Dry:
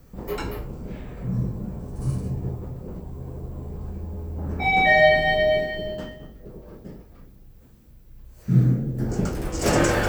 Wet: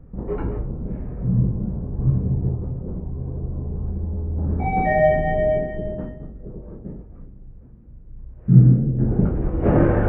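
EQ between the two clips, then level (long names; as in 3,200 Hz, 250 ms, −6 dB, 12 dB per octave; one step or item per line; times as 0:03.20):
Gaussian smoothing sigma 4.9 samples
low-shelf EQ 450 Hz +9.5 dB
−2.0 dB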